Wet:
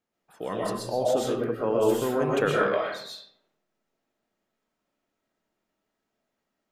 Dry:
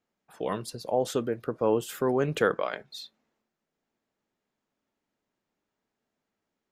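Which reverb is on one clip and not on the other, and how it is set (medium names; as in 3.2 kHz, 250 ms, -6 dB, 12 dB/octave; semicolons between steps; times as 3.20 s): algorithmic reverb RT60 0.66 s, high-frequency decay 0.65×, pre-delay 85 ms, DRR -4.5 dB; trim -2.5 dB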